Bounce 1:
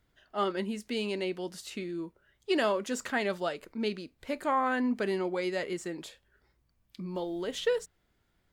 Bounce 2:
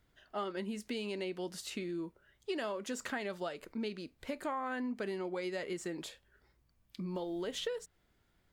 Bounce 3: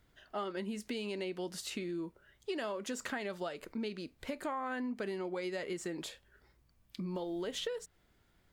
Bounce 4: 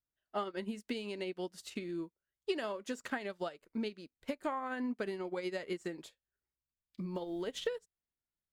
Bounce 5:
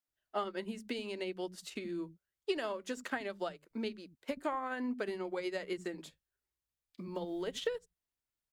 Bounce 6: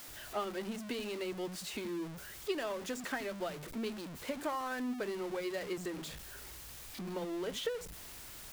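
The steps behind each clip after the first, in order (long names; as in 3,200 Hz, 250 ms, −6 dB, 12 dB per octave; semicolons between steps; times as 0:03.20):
downward compressor 6 to 1, threshold −35 dBFS, peak gain reduction 11.5 dB
downward compressor 1.5 to 1, threshold −43 dBFS, peak gain reduction 4.5 dB; level +3 dB
expander for the loud parts 2.5 to 1, over −57 dBFS; level +5 dB
multiband delay without the direct sound highs, lows 80 ms, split 190 Hz; level +1 dB
converter with a step at zero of −37.5 dBFS; level −3 dB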